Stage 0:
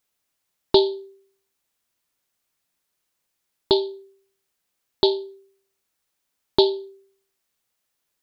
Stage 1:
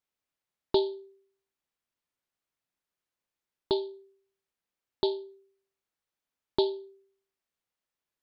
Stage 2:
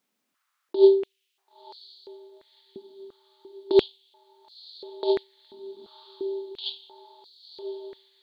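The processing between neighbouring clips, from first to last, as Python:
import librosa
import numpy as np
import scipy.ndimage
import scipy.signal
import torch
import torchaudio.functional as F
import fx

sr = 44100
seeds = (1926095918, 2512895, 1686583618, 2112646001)

y1 = fx.high_shelf(x, sr, hz=4800.0, db=-10.0)
y1 = y1 * librosa.db_to_amplitude(-8.5)
y2 = fx.over_compress(y1, sr, threshold_db=-30.0, ratio=-0.5)
y2 = fx.echo_diffused(y2, sr, ms=1000, feedback_pct=61, wet_db=-11)
y2 = fx.filter_held_highpass(y2, sr, hz=2.9, low_hz=220.0, high_hz=4500.0)
y2 = y2 * librosa.db_to_amplitude(6.5)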